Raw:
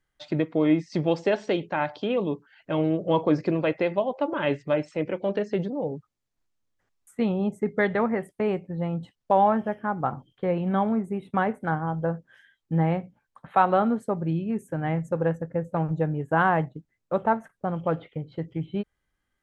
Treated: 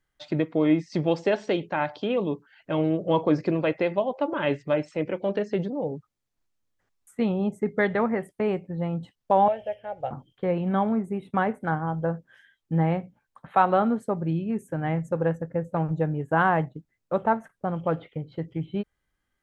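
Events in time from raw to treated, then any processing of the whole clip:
9.48–10.11 EQ curve 110 Hz 0 dB, 170 Hz -22 dB, 260 Hz -21 dB, 370 Hz -15 dB, 550 Hz +5 dB, 790 Hz -5 dB, 1100 Hz -24 dB, 2800 Hz +7 dB, 4000 Hz -1 dB, 6800 Hz -5 dB

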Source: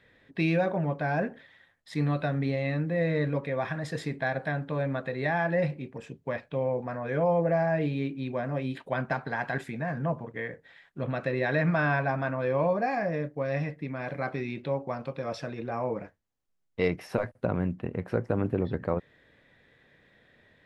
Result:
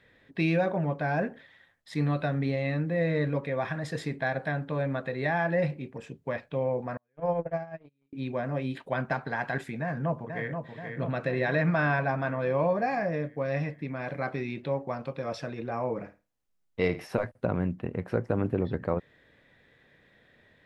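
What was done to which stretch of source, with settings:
6.97–8.13 gate -24 dBFS, range -47 dB
9.81–10.51 echo throw 0.48 s, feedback 65%, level -6 dB
15.91–17.05 flutter echo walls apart 9.2 m, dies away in 0.28 s

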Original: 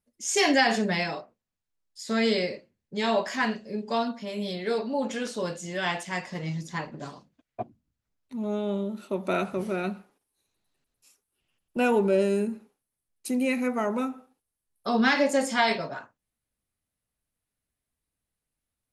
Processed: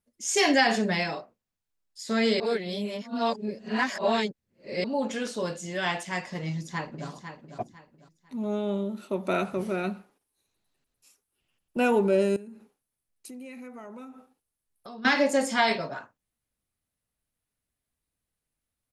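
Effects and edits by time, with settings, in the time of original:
2.4–4.84 reverse
6.48–7.08 echo throw 0.5 s, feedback 30%, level -9 dB
12.36–15.05 compressor 4:1, threshold -43 dBFS

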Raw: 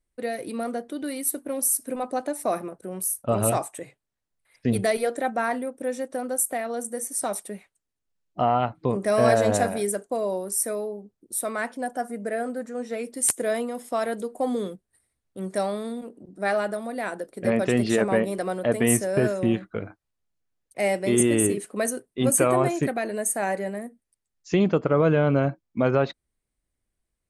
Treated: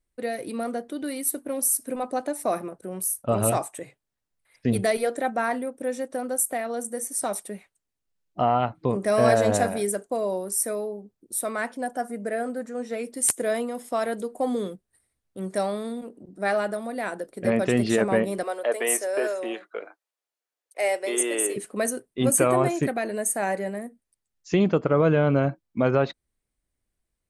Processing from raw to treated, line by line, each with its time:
18.43–21.56 HPF 420 Hz 24 dB/oct

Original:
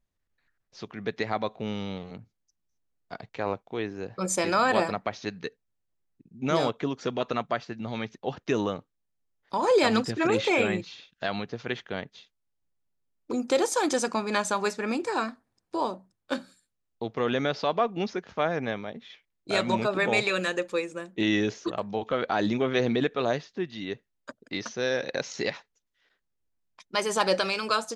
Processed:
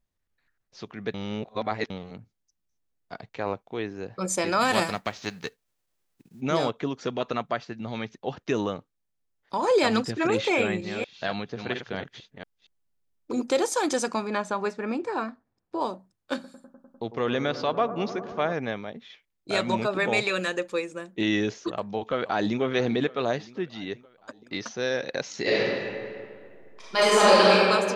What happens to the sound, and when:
1.14–1.9 reverse
4.6–6.4 spectral whitening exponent 0.6
10.58–13.53 reverse delay 0.232 s, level -6 dB
14.27–15.81 LPF 1600 Hz 6 dB/oct
16.34–18.53 analogue delay 0.1 s, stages 1024, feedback 83%, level -13.5 dB
21.75–22.61 echo throw 0.48 s, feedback 60%, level -17 dB
25.41–27.52 reverb throw, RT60 2.2 s, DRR -8.5 dB

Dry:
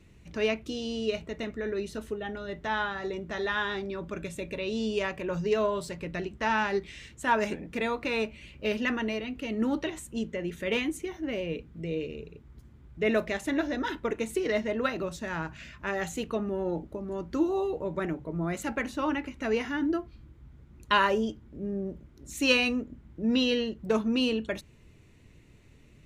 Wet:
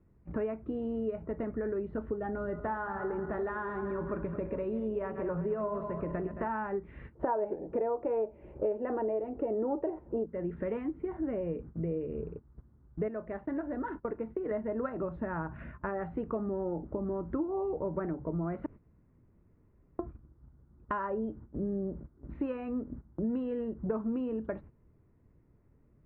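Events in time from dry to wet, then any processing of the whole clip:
2.38–6.48 regenerating reverse delay 0.11 s, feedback 62%, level -10 dB
7.15–10.26 band shelf 540 Hz +14 dB
13.08–14.51 gain -8.5 dB
18.66–19.99 room tone
whole clip: gate -46 dBFS, range -15 dB; compressor 6:1, threshold -38 dBFS; inverse Chebyshev low-pass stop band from 7500 Hz, stop band 80 dB; gain +7 dB

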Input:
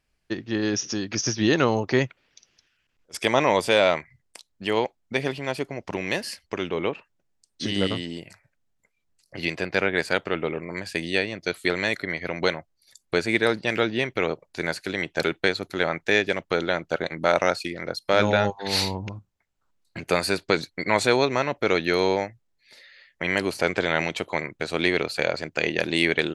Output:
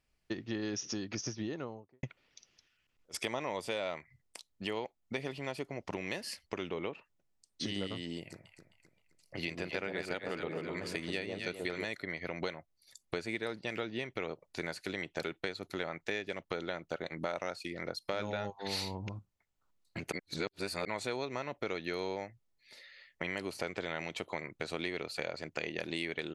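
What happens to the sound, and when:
0.79–2.03 studio fade out
8.19–11.85 echo with dull and thin repeats by turns 0.131 s, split 950 Hz, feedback 61%, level -4 dB
20.12–20.85 reverse
whole clip: notch 1600 Hz, Q 14; compressor 4:1, threshold -30 dBFS; gain -4.5 dB

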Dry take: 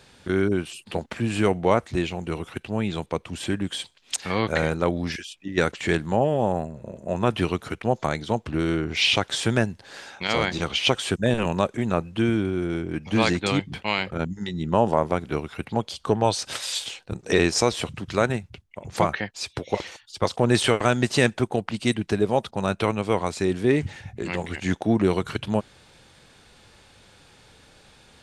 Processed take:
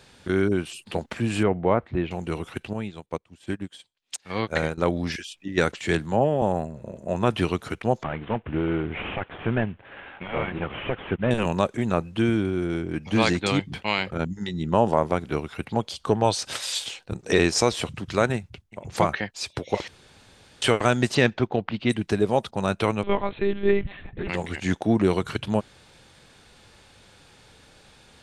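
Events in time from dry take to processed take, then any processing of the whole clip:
1.43–2.11 air absorption 480 m
2.73–4.78 upward expander 2.5:1, over -36 dBFS
5.79–6.42 three-band expander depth 40%
8.03–11.31 CVSD 16 kbps
18.36–18.9 echo throw 0.36 s, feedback 15%, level -16.5 dB
19.88–20.62 room tone
21.14–21.89 LPF 5800 Hz -> 3500 Hz 24 dB/oct
23.03–24.29 monotone LPC vocoder at 8 kHz 200 Hz

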